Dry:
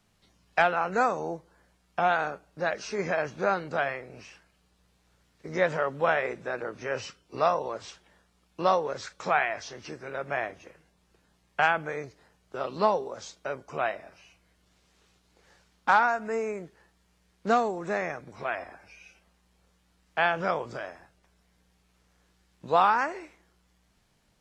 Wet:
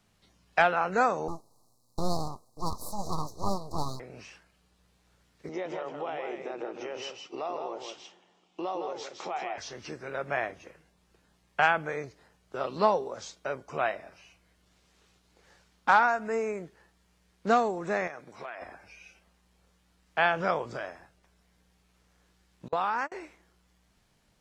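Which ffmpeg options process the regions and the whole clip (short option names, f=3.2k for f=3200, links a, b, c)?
-filter_complex "[0:a]asettb=1/sr,asplit=3[a][b][c];[a]atrim=end=1.284[d];[b]atrim=start=1.28:end=4,asetpts=PTS-STARTPTS,afade=t=in:d=0.004:c=qsin,afade=t=out:st=2.716:d=0.004:c=qsin,aemphasis=mode=production:type=cd,aeval=exprs='abs(val(0))':c=same,asuperstop=centerf=2200:order=20:qfactor=0.8[e];[c]atrim=start=3.996[f];[d][e]acrossfade=d=0.004:c1=hsin:c2=qsin[g];[g][f]acrossfade=d=0.004:c1=qsin:c2=hsin,asettb=1/sr,asplit=3[h][i][j];[h]atrim=end=5.494[k];[i]atrim=start=5.49:end=9.58,asetpts=PTS-STARTPTS,afade=t=in:d=0.004:c=qsin,afade=t=out:st=4.086:d=0.004:c=qsin,acompressor=threshold=-37dB:ratio=3:attack=3.2:release=140:knee=1:detection=peak,highpass=240,equalizer=f=350:t=q:w=4:g=9,equalizer=f=780:t=q:w=4:g=7,equalizer=f=1.6k:t=q:w=4:g=-9,equalizer=f=3k:t=q:w=4:g=7,equalizer=f=4.4k:t=q:w=4:g=-4,lowpass=f=7k:w=0.5412,lowpass=f=7k:w=1.3066,aecho=1:1:161:0.531,atrim=end_sample=180369[l];[j]atrim=start=9.576[m];[k][l]acrossfade=d=0.004:c1=hsin:c2=qsin[n];[n][m]acrossfade=d=0.004:c1=qsin:c2=hsin,asettb=1/sr,asplit=3[o][p][q];[o]atrim=end=18.074[r];[p]atrim=start=18.07:end=18.62,asetpts=PTS-STARTPTS,afade=t=in:d=0.004:c=qsin,afade=t=out:st=0.546:d=0.004:c=qsin,highpass=f=310:p=1,acompressor=threshold=-36dB:ratio=5:attack=3.2:release=140:knee=1:detection=peak,aeval=exprs='clip(val(0),-1,0.0266)':c=same[s];[q]atrim=start=18.616[t];[r][s]acrossfade=d=0.004:c1=hsin:c2=qsin[u];[u][t]acrossfade=d=0.004:c1=qsin:c2=hsin,asettb=1/sr,asplit=3[v][w][x];[v]atrim=end=22.684[y];[w]atrim=start=22.68:end=23.12,asetpts=PTS-STARTPTS,afade=t=in:d=0.004:c=qsin,afade=t=out:st=0.436:d=0.004:c=qsin,agate=range=-33dB:threshold=-28dB:ratio=16:release=100:detection=peak,acompressor=threshold=-24dB:ratio=6:attack=3.2:release=140:knee=1:detection=peak[z];[x]atrim=start=23.116[aa];[y][z]acrossfade=d=0.004:c1=hsin:c2=qsin[ab];[ab][aa]acrossfade=d=0.004:c1=qsin:c2=hsin"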